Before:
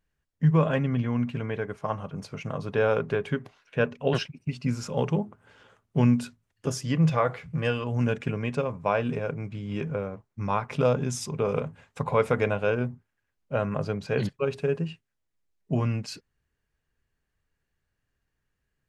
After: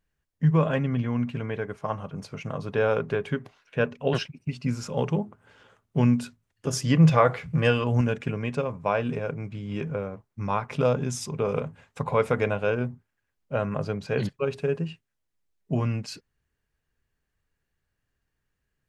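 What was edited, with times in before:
6.73–8.01 s: gain +5 dB

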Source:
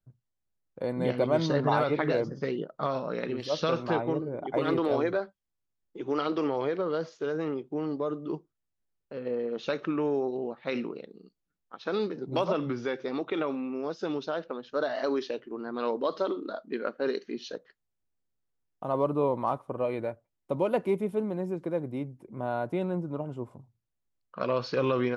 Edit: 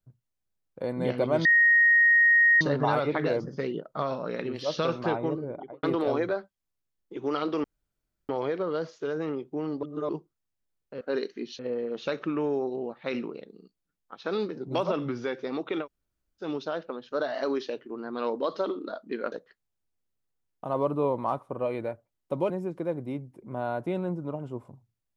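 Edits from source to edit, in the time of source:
1.45 s: add tone 1.87 kHz -16 dBFS 1.16 s
4.29–4.67 s: studio fade out
6.48 s: insert room tone 0.65 s
8.02–8.28 s: reverse
13.44–14.04 s: room tone, crossfade 0.10 s
16.93–17.51 s: move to 9.20 s
20.69–21.36 s: delete

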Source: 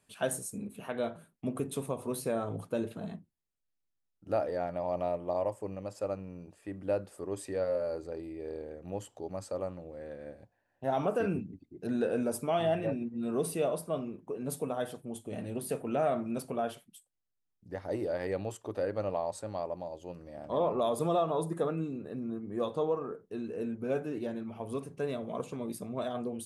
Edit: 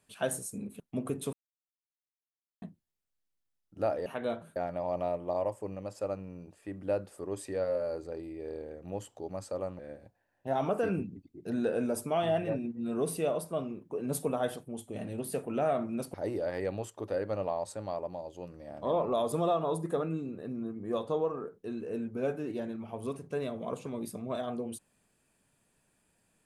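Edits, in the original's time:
0.80–1.30 s: move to 4.56 s
1.83–3.12 s: mute
9.79–10.16 s: delete
14.32–14.93 s: gain +3 dB
16.51–17.81 s: delete

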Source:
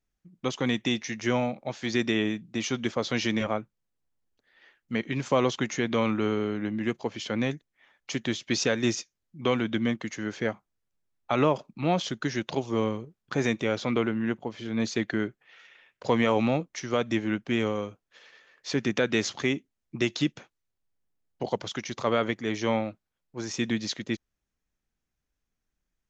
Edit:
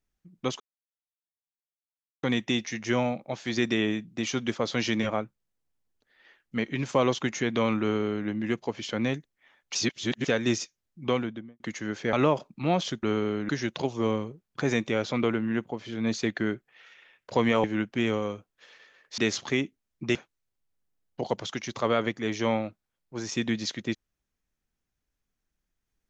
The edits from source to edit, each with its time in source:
0.60 s: insert silence 1.63 s
6.18–6.64 s: copy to 12.22 s
8.12–8.64 s: reverse
9.39–9.97 s: studio fade out
10.50–11.32 s: delete
16.37–17.17 s: delete
18.71–19.10 s: delete
20.07–20.37 s: delete

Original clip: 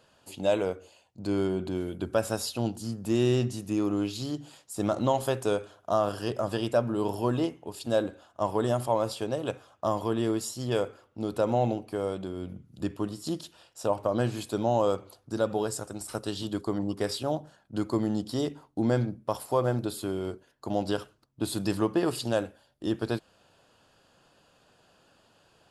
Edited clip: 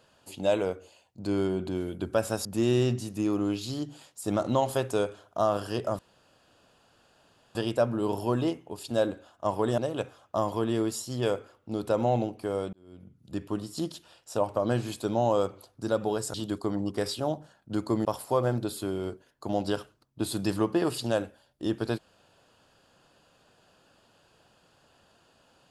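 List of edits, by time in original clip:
2.45–2.97 s: delete
6.51 s: insert room tone 1.56 s
8.74–9.27 s: delete
12.22–13.07 s: fade in
15.83–16.37 s: delete
18.08–19.26 s: delete

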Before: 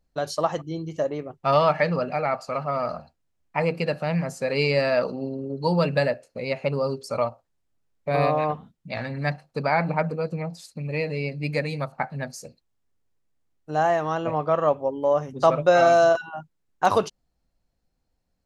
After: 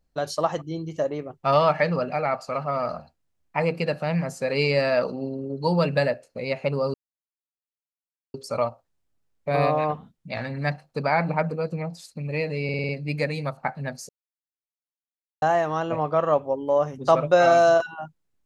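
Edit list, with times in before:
6.94 s: insert silence 1.40 s
11.24 s: stutter 0.05 s, 6 plays
12.44–13.77 s: mute

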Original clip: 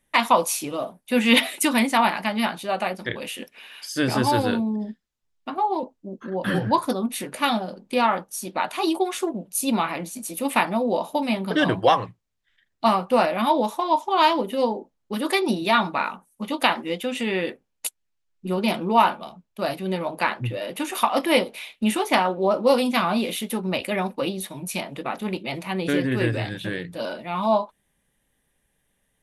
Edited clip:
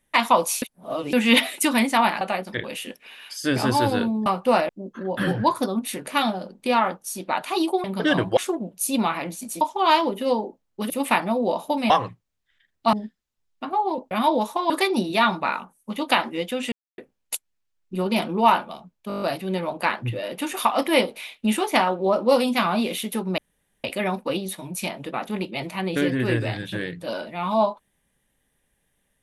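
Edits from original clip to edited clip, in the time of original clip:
0.62–1.13 s: reverse
2.21–2.73 s: delete
4.78–5.96 s: swap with 12.91–13.34 s
11.35–11.88 s: move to 9.11 s
13.93–15.22 s: move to 10.35 s
17.24–17.50 s: mute
19.60 s: stutter 0.02 s, 8 plays
23.76 s: insert room tone 0.46 s

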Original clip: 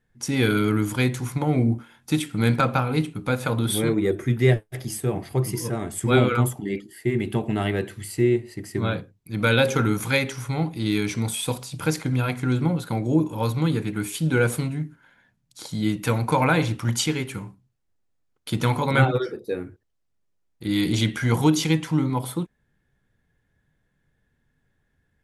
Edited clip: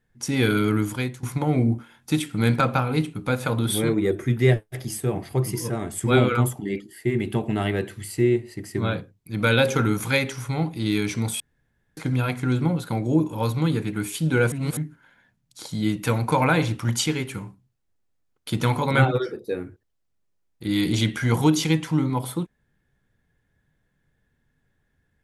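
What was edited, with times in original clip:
0.80–1.23 s: fade out, to -16.5 dB
11.40–11.97 s: room tone
14.52–14.77 s: reverse

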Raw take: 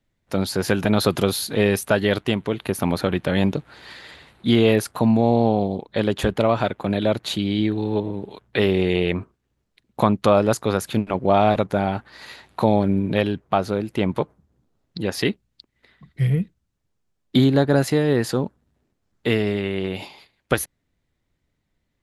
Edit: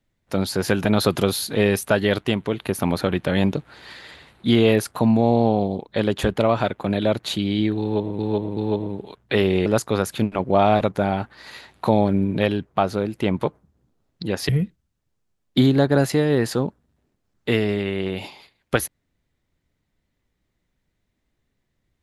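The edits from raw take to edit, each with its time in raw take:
7.81–8.19 s: loop, 3 plays
8.90–10.41 s: delete
15.24–16.27 s: delete

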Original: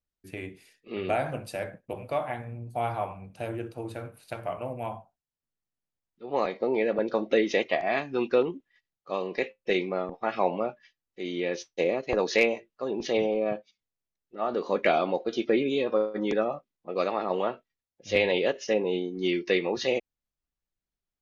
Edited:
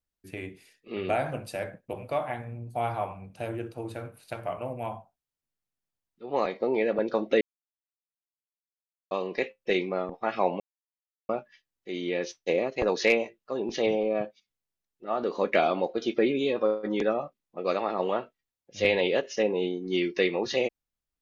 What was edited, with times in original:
7.41–9.11 s: mute
10.60 s: insert silence 0.69 s

